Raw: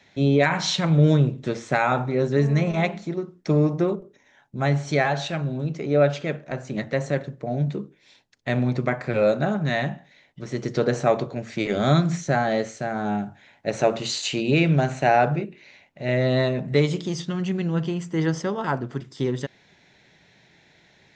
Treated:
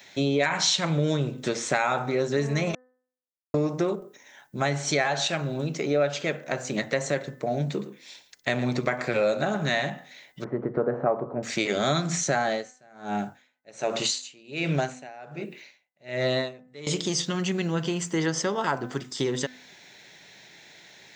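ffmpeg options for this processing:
-filter_complex "[0:a]asettb=1/sr,asplit=3[s0][s1][s2];[s0]atrim=end=7.704[s3];[s1]atrim=start=7.7:end=9.9,asetpts=PTS-STARTPTS,afade=t=in:d=0.004:c=qsin,afade=t=out:st=2.196:d=0.004:c=qsin,aecho=1:1:113:0.188,atrim=end_sample=97020[s4];[s2]atrim=start=9.896[s5];[s3][s4]acrossfade=d=0.004:c1=hsin:c2=qsin[s6];[s6][s5]acrossfade=d=0.004:c1=qsin:c2=hsin,asettb=1/sr,asplit=3[s7][s8][s9];[s7]atrim=end=10.444[s10];[s8]atrim=start=10.44:end=11.43,asetpts=PTS-STARTPTS,afade=t=in:d=0.004:c=qsin,afade=t=out:st=0.986:d=0.004:c=qsin,lowpass=f=1300:w=0.5412,lowpass=f=1300:w=1.3066[s11];[s9]atrim=start=11.426[s12];[s10][s11]acrossfade=d=0.004:c1=hsin:c2=qsin[s13];[s13][s12]acrossfade=d=0.004:c1=qsin:c2=hsin,asettb=1/sr,asplit=3[s14][s15][s16];[s14]atrim=end=12.464[s17];[s15]atrim=start=12.46:end=16.87,asetpts=PTS-STARTPTS,afade=t=in:d=0.004:c=qsin,afade=t=out:st=4.406:d=0.004:c=qsin,aeval=exprs='val(0)*pow(10,-31*(0.5-0.5*cos(2*PI*1.3*n/s))/20)':c=same[s18];[s16]atrim=start=16.866[s19];[s17][s18]acrossfade=d=0.004:c1=hsin:c2=qsin[s20];[s20][s19]acrossfade=d=0.004:c1=qsin:c2=hsin,asplit=3[s21][s22][s23];[s21]atrim=end=2.75,asetpts=PTS-STARTPTS,afade=t=out:st=2.746:d=0.004:c=hsin[s24];[s22]atrim=start=2.75:end=3.54,asetpts=PTS-STARTPTS,volume=0[s25];[s23]atrim=start=3.54,asetpts=PTS-STARTPTS,afade=t=in:d=0.004:c=hsin[s26];[s24][s25][s26]concat=n=3:v=0:a=1,aemphasis=mode=production:type=bsi,bandreject=f=253:t=h:w=4,bandreject=f=506:t=h:w=4,bandreject=f=759:t=h:w=4,bandreject=f=1012:t=h:w=4,bandreject=f=1265:t=h:w=4,bandreject=f=1518:t=h:w=4,bandreject=f=1771:t=h:w=4,bandreject=f=2024:t=h:w=4,acompressor=threshold=0.0355:ratio=2.5,volume=1.78"

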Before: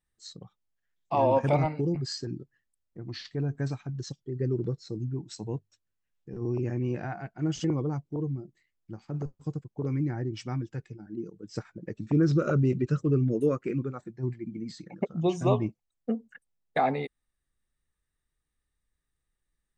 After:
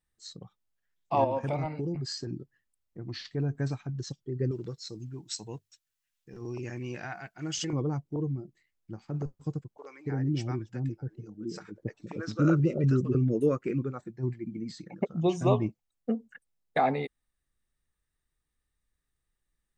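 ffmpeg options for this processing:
-filter_complex "[0:a]asettb=1/sr,asplit=3[s0][s1][s2];[s0]atrim=end=1.244[s3];[s1]atrim=start=1.24:end=2.33,asetpts=PTS-STARTPTS,afade=t=in:d=0.004:c=qsin,afade=t=out:st=1.086:d=0.004:c=qsin,acompressor=threshold=0.0251:ratio=2:attack=3.2:release=140:knee=1:detection=peak[s4];[s2]atrim=start=2.326[s5];[s3][s4]acrossfade=d=0.004:c1=hsin:c2=qsin[s6];[s6][s5]acrossfade=d=0.004:c1=qsin:c2=hsin,asettb=1/sr,asplit=3[s7][s8][s9];[s7]atrim=end=4.514[s10];[s8]atrim=start=4.51:end=7.73,asetpts=PTS-STARTPTS,afade=t=in:d=0.004:c=qsin,afade=t=out:st=3.216:d=0.004:c=qsin,tiltshelf=f=1200:g=-8.5[s11];[s9]atrim=start=7.726[s12];[s10][s11]acrossfade=d=0.004:c1=hsin:c2=qsin[s13];[s13][s12]acrossfade=d=0.004:c1=qsin:c2=hsin,asettb=1/sr,asplit=3[s14][s15][s16];[s14]atrim=end=9.774[s17];[s15]atrim=start=9.77:end=13.15,asetpts=PTS-STARTPTS,afade=t=in:d=0.004:c=qsin,afade=t=out:st=3.376:d=0.004:c=qsin,acrossover=split=560[s18][s19];[s18]adelay=280[s20];[s20][s19]amix=inputs=2:normalize=0,atrim=end_sample=149058[s21];[s16]atrim=start=13.146[s22];[s17][s21]acrossfade=d=0.004:c1=hsin:c2=qsin[s23];[s23][s22]acrossfade=d=0.004:c1=qsin:c2=hsin"

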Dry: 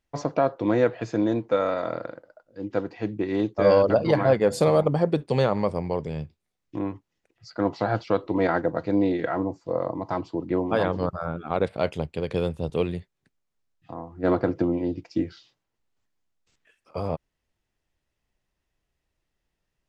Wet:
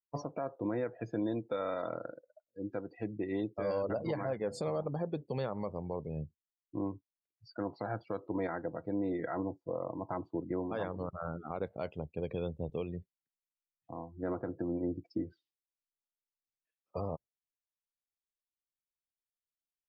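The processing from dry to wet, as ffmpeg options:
-filter_complex "[0:a]asettb=1/sr,asplit=3[s0][s1][s2];[s0]atrim=end=1.134[s3];[s1]atrim=start=1.13:end=3.62,asetpts=PTS-STARTPTS,afade=t=in:d=0.004:c=qsin,afade=t=out:st=2.486:d=0.004:c=qsin,aemphasis=mode=production:type=50fm[s4];[s2]atrim=start=3.616[s5];[s3][s4]acrossfade=d=0.004:c1=hsin:c2=qsin[s6];[s6][s5]acrossfade=d=0.004:c1=qsin:c2=hsin,afftdn=nr=29:nf=-38,alimiter=limit=0.112:level=0:latency=1:release=267,volume=0.501"

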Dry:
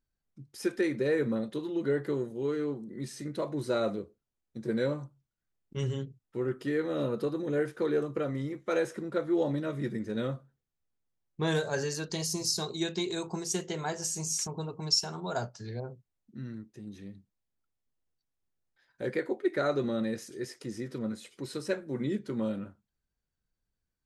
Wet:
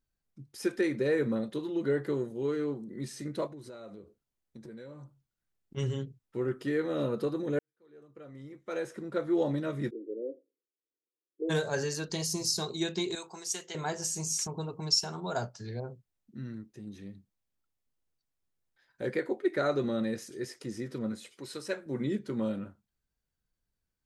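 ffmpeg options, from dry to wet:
-filter_complex "[0:a]asplit=3[s0][s1][s2];[s0]afade=t=out:st=3.46:d=0.02[s3];[s1]acompressor=threshold=0.00631:ratio=6:attack=3.2:release=140:knee=1:detection=peak,afade=t=in:st=3.46:d=0.02,afade=t=out:st=5.76:d=0.02[s4];[s2]afade=t=in:st=5.76:d=0.02[s5];[s3][s4][s5]amix=inputs=3:normalize=0,asplit=3[s6][s7][s8];[s6]afade=t=out:st=9.89:d=0.02[s9];[s7]asuperpass=centerf=390:order=8:qfactor=1.6,afade=t=in:st=9.89:d=0.02,afade=t=out:st=11.49:d=0.02[s10];[s8]afade=t=in:st=11.49:d=0.02[s11];[s9][s10][s11]amix=inputs=3:normalize=0,asettb=1/sr,asplit=3[s12][s13][s14];[s12]atrim=end=13.154[s15];[s13]atrim=start=13.15:end=13.75,asetpts=PTS-STARTPTS,afade=t=in:d=0.004:c=qsin,afade=t=out:st=0.596:d=0.004:c=qsin,highpass=f=1300:p=1[s16];[s14]atrim=start=13.746[s17];[s15][s16]acrossfade=d=0.004:c1=hsin:c2=qsin[s18];[s18][s17]acrossfade=d=0.004:c1=qsin:c2=hsin,asettb=1/sr,asplit=3[s19][s20][s21];[s19]atrim=end=21.324[s22];[s20]atrim=start=21.32:end=21.86,asetpts=PTS-STARTPTS,afade=t=in:d=0.004:c=qsin,afade=t=out:st=0.536:d=0.004:c=qsin,lowshelf=f=380:g=-9[s23];[s21]atrim=start=21.856[s24];[s22][s23]acrossfade=d=0.004:c1=hsin:c2=qsin[s25];[s25][s24]acrossfade=d=0.004:c1=qsin:c2=hsin,asplit=2[s26][s27];[s26]atrim=end=7.59,asetpts=PTS-STARTPTS,afade=t=out:st=7.586:d=0.004:c=hsin[s28];[s27]atrim=start=7.59,asetpts=PTS-STARTPTS,afade=t=in:d=1.69:c=qua[s29];[s28][s29]concat=n=2:v=0:a=1"

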